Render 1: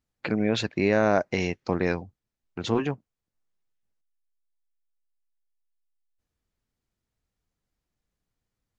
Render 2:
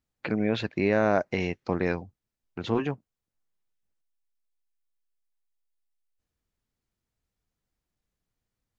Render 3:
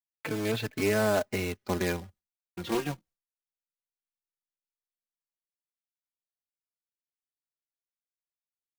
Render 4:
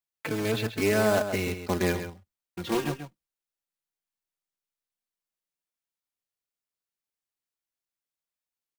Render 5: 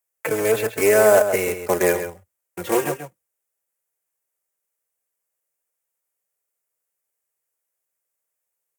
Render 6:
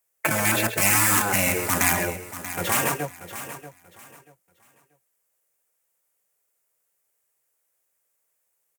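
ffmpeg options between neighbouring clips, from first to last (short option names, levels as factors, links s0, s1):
-filter_complex "[0:a]acrossover=split=4000[s0][s1];[s1]acompressor=threshold=0.00282:ratio=4:attack=1:release=60[s2];[s0][s2]amix=inputs=2:normalize=0,volume=0.841"
-filter_complex "[0:a]acrusher=bits=2:mode=log:mix=0:aa=0.000001,agate=range=0.0224:threshold=0.00316:ratio=3:detection=peak,asplit=2[s0][s1];[s1]adelay=4,afreqshift=-0.26[s2];[s0][s2]amix=inputs=2:normalize=1"
-filter_complex "[0:a]asplit=2[s0][s1];[s1]adelay=134.1,volume=0.355,highshelf=f=4000:g=-3.02[s2];[s0][s2]amix=inputs=2:normalize=0,volume=1.26"
-filter_complex "[0:a]equalizer=f=250:t=o:w=1:g=-9,equalizer=f=500:t=o:w=1:g=10,equalizer=f=2000:t=o:w=1:g=4,equalizer=f=4000:t=o:w=1:g=-11,equalizer=f=8000:t=o:w=1:g=6,equalizer=f=16000:t=o:w=1:g=9,acrossover=split=170[s0][s1];[s0]acompressor=threshold=0.00631:ratio=6[s2];[s2][s1]amix=inputs=2:normalize=0,highpass=74,volume=1.78"
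-af "afftfilt=real='re*lt(hypot(re,im),0.224)':imag='im*lt(hypot(re,im),0.224)':win_size=1024:overlap=0.75,aecho=1:1:635|1270|1905:0.224|0.056|0.014,volume=2"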